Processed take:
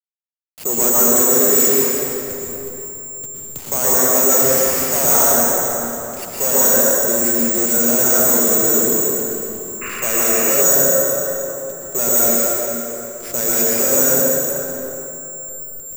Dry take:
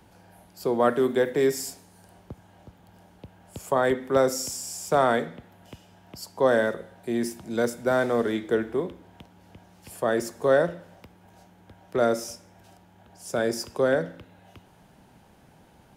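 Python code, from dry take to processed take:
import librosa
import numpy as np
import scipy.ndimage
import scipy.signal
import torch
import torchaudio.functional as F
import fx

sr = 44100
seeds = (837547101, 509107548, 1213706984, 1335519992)

y = fx.delta_hold(x, sr, step_db=-38.0)
y = (np.kron(y[::6], np.eye(6)[0]) * 6)[:len(y)]
y = fx.rev_plate(y, sr, seeds[0], rt60_s=3.3, hf_ratio=0.65, predelay_ms=100, drr_db=-5.0)
y = 10.0 ** (-7.5 / 20.0) * np.tanh(y / 10.0 ** (-7.5 / 20.0))
y = fx.low_shelf(y, sr, hz=190.0, db=-11.0)
y = fx.spec_paint(y, sr, seeds[1], shape='noise', start_s=9.81, length_s=0.81, low_hz=1000.0, high_hz=2900.0, level_db=-30.0)
y = fx.low_shelf(y, sr, hz=390.0, db=8.0)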